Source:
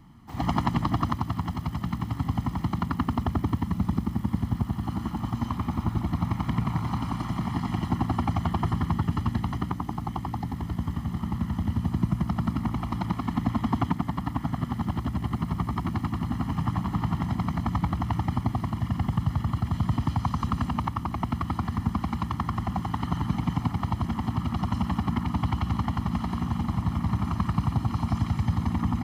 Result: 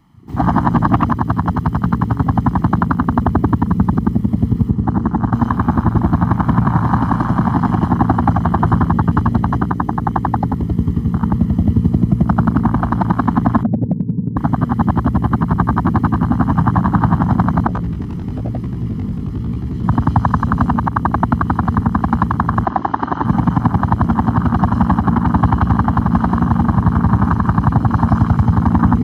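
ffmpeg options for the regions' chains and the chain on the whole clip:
ffmpeg -i in.wav -filter_complex "[0:a]asettb=1/sr,asplit=3[link_01][link_02][link_03];[link_01]atrim=end=4.694[link_04];[link_02]atrim=start=4.69:end=5.33,asetpts=PTS-STARTPTS,afade=type=in:duration=0.004:curve=qsin,afade=type=out:start_time=0.636:duration=0.004:curve=qsin,lowpass=7000,equalizer=frequency=3300:width=0.74:gain=-8[link_05];[link_03]atrim=start=5.326[link_06];[link_04][link_05]acrossfade=duration=0.004:curve1=hsin:curve2=qsin[link_07];[link_07][link_06]acrossfade=duration=0.004:curve1=qsin:curve2=hsin,asettb=1/sr,asplit=3[link_08][link_09][link_10];[link_08]atrim=end=13.634[link_11];[link_09]atrim=start=13.63:end=14.37,asetpts=PTS-STARTPTS,afade=type=in:duration=0.004:curve=qsin,afade=type=out:start_time=0.736:duration=0.004:curve=qsin,asuperpass=centerf=160:order=4:qfactor=1.1,volume=24.5dB,asoftclip=hard,volume=-24.5dB[link_12];[link_10]atrim=start=14.366[link_13];[link_11][link_12]acrossfade=duration=0.004:curve1=hsin:curve2=qsin[link_14];[link_14][link_13]acrossfade=duration=0.004:curve1=qsin:curve2=hsin,asettb=1/sr,asplit=3[link_15][link_16][link_17];[link_15]atrim=end=17.674[link_18];[link_16]atrim=start=17.67:end=19.84,asetpts=PTS-STARTPTS,afade=type=in:duration=0.004:curve=qsin,afade=type=out:start_time=2.166:duration=0.004:curve=qsin,equalizer=frequency=5000:width_type=o:width=0.35:gain=2.5,asoftclip=type=hard:threshold=-28dB,flanger=delay=15.5:depth=6:speed=1[link_19];[link_17]atrim=start=19.836[link_20];[link_18][link_19]acrossfade=duration=0.004:curve1=hsin:curve2=qsin[link_21];[link_21][link_20]acrossfade=duration=0.004:curve1=qsin:curve2=hsin,asettb=1/sr,asplit=3[link_22][link_23][link_24];[link_22]atrim=end=22.654[link_25];[link_23]atrim=start=22.65:end=23.25,asetpts=PTS-STARTPTS,afade=type=in:duration=0.004:curve=qsin,afade=type=out:start_time=0.596:duration=0.004:curve=qsin,lowpass=frequency=5900:width=0.5412,lowpass=frequency=5900:width=1.3066,lowshelf=frequency=240:width_type=q:width=1.5:gain=-10[link_26];[link_24]atrim=start=23.246[link_27];[link_25][link_26]acrossfade=duration=0.004:curve1=hsin:curve2=qsin[link_28];[link_28][link_27]acrossfade=duration=0.004:curve1=qsin:curve2=hsin,afwtdn=0.02,lowshelf=frequency=180:gain=-5.5,alimiter=level_in=18dB:limit=-1dB:release=50:level=0:latency=1,volume=-1dB" out.wav

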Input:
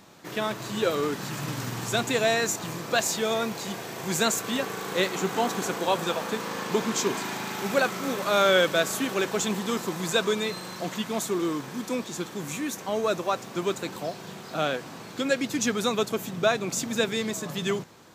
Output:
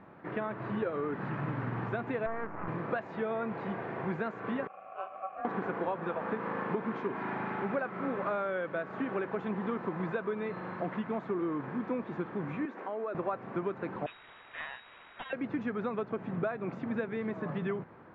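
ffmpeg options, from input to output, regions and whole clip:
ffmpeg -i in.wav -filter_complex "[0:a]asettb=1/sr,asplit=3[link_01][link_02][link_03];[link_01]atrim=end=2.264[link_04];[link_02]atrim=start=2.26:end=2.68,asetpts=PTS-STARTPTS,afade=type=in:duration=0.004:curve=qsin,afade=type=out:start_time=0.416:duration=0.004:curve=qsin,highshelf=frequency=1900:width_type=q:width=3:gain=-13.5,aeval=exprs='max(val(0),0)':channel_layout=same[link_05];[link_03]atrim=start=2.676[link_06];[link_04][link_05]acrossfade=duration=0.004:curve1=hsin:curve2=qsin[link_07];[link_07][link_06]acrossfade=duration=0.004:curve1=qsin:curve2=hsin,asettb=1/sr,asplit=3[link_08][link_09][link_10];[link_08]atrim=end=4.674[link_11];[link_09]atrim=start=4.67:end=5.45,asetpts=PTS-STARTPTS,afade=type=in:duration=0.004:curve=qsin,afade=type=out:start_time=0.776:duration=0.004:curve=qsin,bandreject=frequency=490:width=5.7,aeval=exprs='val(0)*sin(2*PI*950*n/s)':channel_layout=same,asplit=3[link_12][link_13][link_14];[link_12]bandpass=frequency=730:width_type=q:width=8,volume=0dB[link_15];[link_13]bandpass=frequency=1090:width_type=q:width=8,volume=-6dB[link_16];[link_14]bandpass=frequency=2440:width_type=q:width=8,volume=-9dB[link_17];[link_15][link_16][link_17]amix=inputs=3:normalize=0[link_18];[link_10]atrim=start=5.446[link_19];[link_11][link_18]acrossfade=duration=0.004:curve1=hsin:curve2=qsin[link_20];[link_20][link_19]acrossfade=duration=0.004:curve1=qsin:curve2=hsin,asettb=1/sr,asplit=3[link_21][link_22][link_23];[link_21]atrim=end=12.654[link_24];[link_22]atrim=start=12.65:end=13.15,asetpts=PTS-STARTPTS,afade=type=in:duration=0.004:curve=qsin,afade=type=out:start_time=0.496:duration=0.004:curve=qsin,highpass=frequency=250:width=0.5412,highpass=frequency=250:width=1.3066,acompressor=threshold=-33dB:ratio=5:attack=3.2:release=140:knee=1:detection=peak[link_25];[link_23]atrim=start=13.146[link_26];[link_24][link_25]acrossfade=duration=0.004:curve1=hsin:curve2=qsin[link_27];[link_27][link_26]acrossfade=duration=0.004:curve1=qsin:curve2=hsin,asettb=1/sr,asplit=3[link_28][link_29][link_30];[link_28]atrim=end=14.064[link_31];[link_29]atrim=start=14.06:end=15.33,asetpts=PTS-STARTPTS,afade=type=in:duration=0.004:curve=qsin,afade=type=out:start_time=1.266:duration=0.004:curve=qsin,aeval=exprs='abs(val(0))':channel_layout=same,lowpass=frequency=3200:width_type=q:width=0.5098,lowpass=frequency=3200:width_type=q:width=0.6013,lowpass=frequency=3200:width_type=q:width=0.9,lowpass=frequency=3200:width_type=q:width=2.563,afreqshift=-3800[link_32];[link_30]atrim=start=15.326[link_33];[link_31][link_32]acrossfade=duration=0.004:curve1=hsin:curve2=qsin[link_34];[link_34][link_33]acrossfade=duration=0.004:curve1=qsin:curve2=hsin,acompressor=threshold=-29dB:ratio=10,lowpass=frequency=1900:width=0.5412,lowpass=frequency=1900:width=1.3066" out.wav

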